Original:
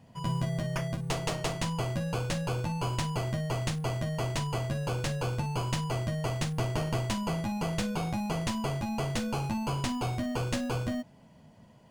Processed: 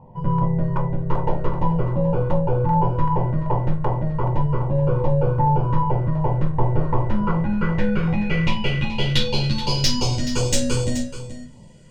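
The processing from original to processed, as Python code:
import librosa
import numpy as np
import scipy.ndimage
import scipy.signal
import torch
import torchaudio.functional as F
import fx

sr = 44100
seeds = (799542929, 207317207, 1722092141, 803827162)

y = fx.filter_sweep_lowpass(x, sr, from_hz=940.0, to_hz=7900.0, start_s=6.79, end_s=10.57, q=3.6)
y = fx.notch(y, sr, hz=670.0, q=12.0)
y = fx.filter_lfo_notch(y, sr, shape='saw_down', hz=2.6, low_hz=680.0, high_hz=1700.0, q=0.95)
y = fx.dynamic_eq(y, sr, hz=5100.0, q=0.75, threshold_db=-43.0, ratio=4.0, max_db=6)
y = 10.0 ** (-19.0 / 20.0) * np.tanh(y / 10.0 ** (-19.0 / 20.0))
y = fx.low_shelf(y, sr, hz=120.0, db=5.5)
y = y + 0.4 * np.pad(y, (int(2.1 * sr / 1000.0), 0))[:len(y)]
y = y + 10.0 ** (-12.0 / 20.0) * np.pad(y, (int(428 * sr / 1000.0), 0))[:len(y)]
y = fx.room_shoebox(y, sr, seeds[0], volume_m3=130.0, walls='furnished', distance_m=0.92)
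y = F.gain(torch.from_numpy(y), 6.5).numpy()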